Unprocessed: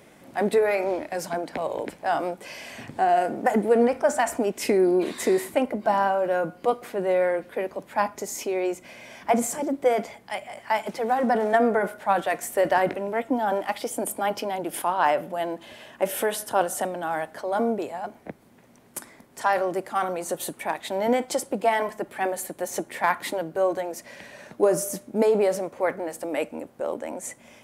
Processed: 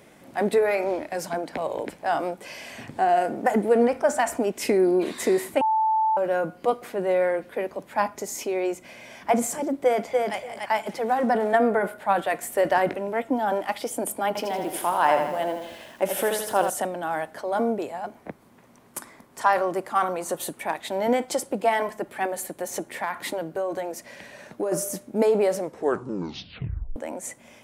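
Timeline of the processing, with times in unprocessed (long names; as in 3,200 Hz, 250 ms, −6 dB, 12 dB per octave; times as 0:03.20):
0:05.61–0:06.17: beep over 878 Hz −18.5 dBFS
0:09.84–0:10.36: delay throw 290 ms, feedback 15%, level −2.5 dB
0:11.36–0:12.52: parametric band 5,900 Hz −6 dB 0.39 octaves
0:14.27–0:16.70: feedback echo at a low word length 81 ms, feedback 55%, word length 8 bits, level −6 dB
0:18.17–0:20.42: parametric band 1,100 Hz +5.5 dB 0.56 octaves
0:22.25–0:24.72: downward compressor, threshold −23 dBFS
0:25.58: tape stop 1.38 s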